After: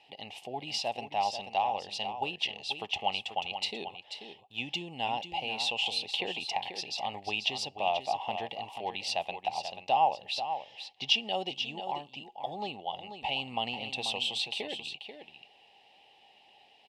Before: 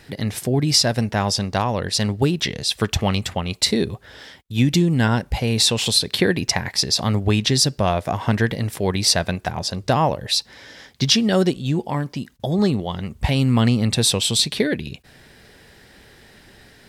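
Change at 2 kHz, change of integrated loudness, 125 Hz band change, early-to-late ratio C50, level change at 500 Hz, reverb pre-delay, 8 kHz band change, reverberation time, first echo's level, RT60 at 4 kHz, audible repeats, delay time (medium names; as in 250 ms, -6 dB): -9.0 dB, -13.0 dB, -31.0 dB, no reverb, -14.0 dB, no reverb, -22.5 dB, no reverb, -9.0 dB, no reverb, 1, 487 ms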